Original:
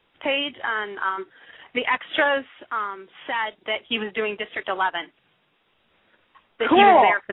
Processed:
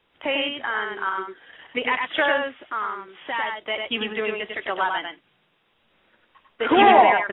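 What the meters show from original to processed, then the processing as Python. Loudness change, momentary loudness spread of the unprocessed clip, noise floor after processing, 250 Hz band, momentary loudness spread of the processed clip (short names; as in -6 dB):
0.0 dB, 16 LU, -67 dBFS, 0.0 dB, 15 LU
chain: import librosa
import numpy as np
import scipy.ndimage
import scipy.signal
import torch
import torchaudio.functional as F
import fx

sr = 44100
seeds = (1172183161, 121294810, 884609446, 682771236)

y = x + 10.0 ** (-4.0 / 20.0) * np.pad(x, (int(98 * sr / 1000.0), 0))[:len(x)]
y = y * librosa.db_to_amplitude(-1.5)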